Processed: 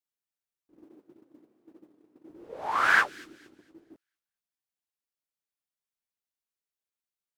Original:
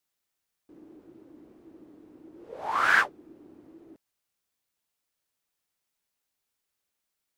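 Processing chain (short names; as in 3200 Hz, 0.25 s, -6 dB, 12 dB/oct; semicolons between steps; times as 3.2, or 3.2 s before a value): 0.83–2.3 HPF 150 Hz 12 dB/oct; gate -50 dBFS, range -13 dB; on a send: thin delay 0.228 s, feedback 30%, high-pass 3600 Hz, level -13.5 dB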